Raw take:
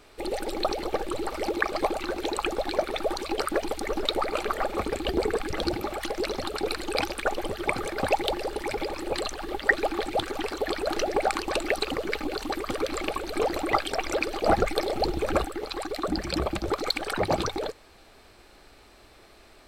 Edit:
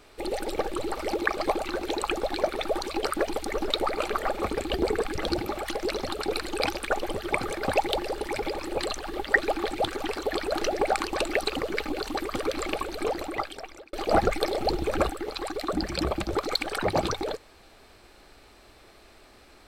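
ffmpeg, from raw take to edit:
-filter_complex "[0:a]asplit=3[a][b][c];[a]atrim=end=0.562[d];[b]atrim=start=0.908:end=14.28,asetpts=PTS-STARTPTS,afade=t=out:st=12.242:d=1.13[e];[c]atrim=start=14.28,asetpts=PTS-STARTPTS,afade=t=in:d=0.004:c=hsin[f];[e][f]concat=n=2:v=0:a=1[g];[d][g]acrossfade=d=0.004:c1=hsin:c2=hsin"

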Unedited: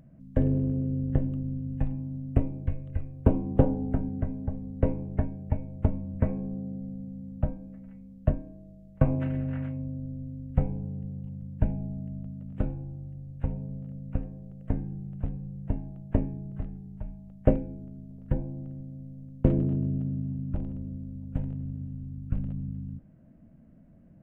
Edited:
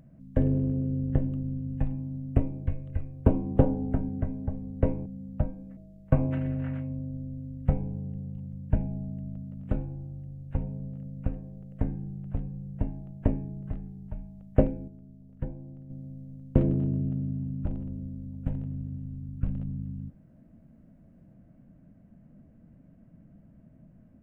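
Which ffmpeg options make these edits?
-filter_complex "[0:a]asplit=5[a][b][c][d][e];[a]atrim=end=5.062[f];[b]atrim=start=7.088:end=7.802[g];[c]atrim=start=8.658:end=17.772[h];[d]atrim=start=17.768:end=18.792,asetpts=PTS-STARTPTS,volume=-6.5dB[i];[e]atrim=start=18.788[j];[f][g]acrossfade=d=0.004:c1=hsin:c2=hsin[k];[k][h]acrossfade=d=0.004:c1=hsin:c2=hsin[l];[l][i]acrossfade=d=0.004:c1=hsin:c2=hsin[m];[m][j]acrossfade=d=0.004:c1=hsin:c2=hsin"

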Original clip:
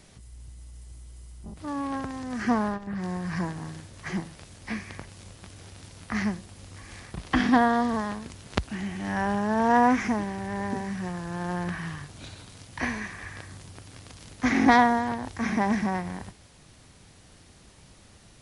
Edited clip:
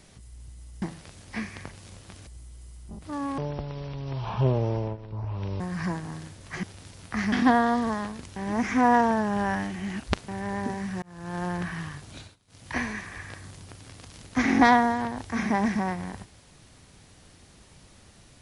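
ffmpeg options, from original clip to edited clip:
-filter_complex "[0:a]asplit=12[a][b][c][d][e][f][g][h][i][j][k][l];[a]atrim=end=0.822[m];[b]atrim=start=4.158:end=5.612[n];[c]atrim=start=0.818:end=1.934[o];[d]atrim=start=1.93:end=3.13,asetpts=PTS-STARTPTS,asetrate=23814,aresample=44100[p];[e]atrim=start=3.126:end=4.162[q];[f]atrim=start=5.608:end=6.302[r];[g]atrim=start=7.388:end=8.432[s];[h]atrim=start=8.428:end=10.352,asetpts=PTS-STARTPTS,areverse[t];[i]atrim=start=10.348:end=11.09,asetpts=PTS-STARTPTS,afade=t=out:st=0.738:d=0.004:c=hsin[u];[j]atrim=start=11.09:end=12.43,asetpts=PTS-STARTPTS,afade=t=in:d=0.35,afade=t=out:st=1.1:d=0.24:c=qsin:silence=0.0891251[v];[k]atrim=start=12.43:end=12.54,asetpts=PTS-STARTPTS,volume=-21dB[w];[l]atrim=start=12.54,asetpts=PTS-STARTPTS,afade=t=in:d=0.24:c=qsin:silence=0.0891251[x];[m][n]acrossfade=d=0.004:c1=hsin:c2=hsin[y];[y][o]acrossfade=d=0.004:c1=hsin:c2=hsin[z];[z][p]acrossfade=d=0.004:c1=hsin:c2=hsin[aa];[aa][q]acrossfade=d=0.004:c1=hsin:c2=hsin[ab];[ab][r]acrossfade=d=0.004:c1=hsin:c2=hsin[ac];[ac][s]acrossfade=d=0.004:c1=hsin:c2=hsin[ad];[ad][t]acrossfade=d=0.004:c1=hsin:c2=hsin[ae];[u][v][w][x]concat=n=4:v=0:a=1[af];[ae][af]acrossfade=d=0.004:c1=hsin:c2=hsin"

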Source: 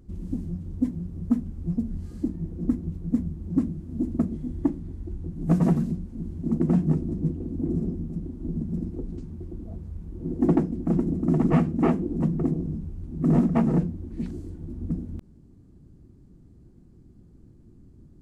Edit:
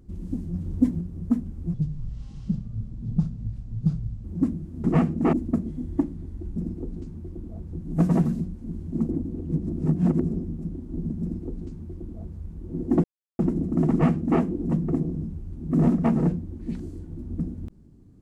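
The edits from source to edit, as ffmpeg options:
-filter_complex "[0:a]asplit=13[a][b][c][d][e][f][g][h][i][j][k][l][m];[a]atrim=end=0.542[n];[b]atrim=start=0.538:end=1.012,asetpts=PTS-STARTPTS,volume=4.5dB[o];[c]atrim=start=1.008:end=1.744[p];[d]atrim=start=1.74:end=3.39,asetpts=PTS-STARTPTS,asetrate=29106,aresample=44100[q];[e]atrim=start=3.386:end=3.992[r];[f]atrim=start=11.418:end=11.912[s];[g]atrim=start=3.988:end=5.222[t];[h]atrim=start=8.718:end=9.872[u];[i]atrim=start=5.218:end=6.602[v];[j]atrim=start=6.598:end=7.722,asetpts=PTS-STARTPTS,areverse[w];[k]atrim=start=7.718:end=10.55,asetpts=PTS-STARTPTS,afade=t=out:st=2.828:d=0.004:c=hsin[x];[l]atrim=start=10.55:end=10.9,asetpts=PTS-STARTPTS,volume=0[y];[m]atrim=start=10.9,asetpts=PTS-STARTPTS,afade=t=in:d=0.004:c=hsin[z];[n][o]acrossfade=d=0.004:c1=hsin:c2=hsin[aa];[aa][p]acrossfade=d=0.004:c1=hsin:c2=hsin[ab];[ab][q]acrossfade=d=0.004:c1=hsin:c2=hsin[ac];[ac][r]acrossfade=d=0.004:c1=hsin:c2=hsin[ad];[ad][s]acrossfade=d=0.004:c1=hsin:c2=hsin[ae];[ae][t]acrossfade=d=0.004:c1=hsin:c2=hsin[af];[af][u]acrossfade=d=0.004:c1=hsin:c2=hsin[ag];[ag][v]acrossfade=d=0.004:c1=hsin:c2=hsin[ah];[ah][w]acrossfade=d=0.004:c1=hsin:c2=hsin[ai];[x][y][z]concat=n=3:v=0:a=1[aj];[ai][aj]acrossfade=d=0.004:c1=hsin:c2=hsin"

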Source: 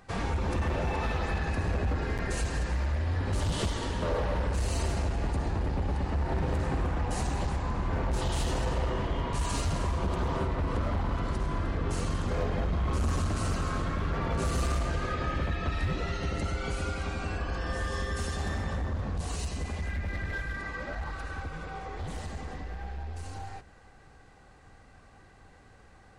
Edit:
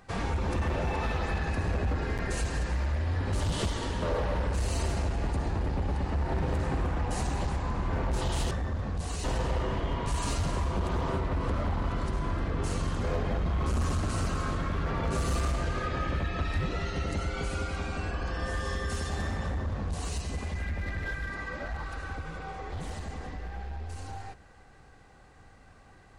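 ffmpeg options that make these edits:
-filter_complex "[0:a]asplit=3[a][b][c];[a]atrim=end=8.512[d];[b]atrim=start=18.708:end=19.442[e];[c]atrim=start=8.508[f];[d][e]acrossfade=d=0.004:c1=hsin:c2=hsin[g];[g][f]acrossfade=d=0.004:c1=hsin:c2=hsin"

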